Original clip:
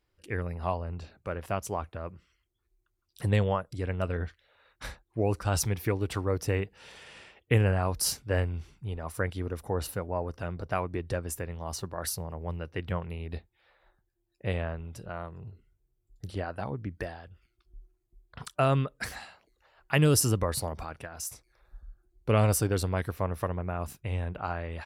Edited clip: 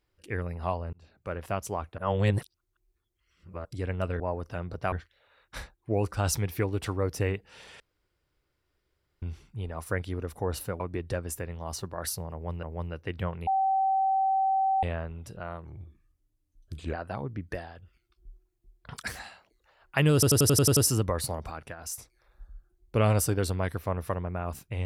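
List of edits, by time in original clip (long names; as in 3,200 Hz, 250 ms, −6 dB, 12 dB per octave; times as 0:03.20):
0:00.93–0:01.32: fade in
0:01.98–0:03.65: reverse
0:07.08–0:08.50: fill with room tone
0:10.08–0:10.80: move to 0:04.20
0:12.32–0:12.63: repeat, 2 plays
0:13.16–0:14.52: beep over 771 Hz −22 dBFS
0:15.34–0:16.42: play speed 84%
0:18.51–0:18.99: remove
0:20.10: stutter 0.09 s, 8 plays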